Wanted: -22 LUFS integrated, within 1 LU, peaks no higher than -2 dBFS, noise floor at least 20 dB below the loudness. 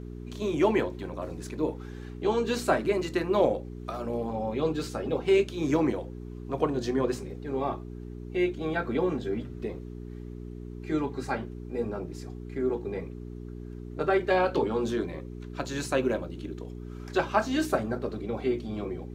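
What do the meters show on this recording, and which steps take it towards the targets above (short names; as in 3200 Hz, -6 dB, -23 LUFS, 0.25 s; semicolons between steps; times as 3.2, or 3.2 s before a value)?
hum 60 Hz; harmonics up to 420 Hz; hum level -37 dBFS; loudness -29.5 LUFS; peak -10.0 dBFS; loudness target -22.0 LUFS
-> de-hum 60 Hz, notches 7; gain +7.5 dB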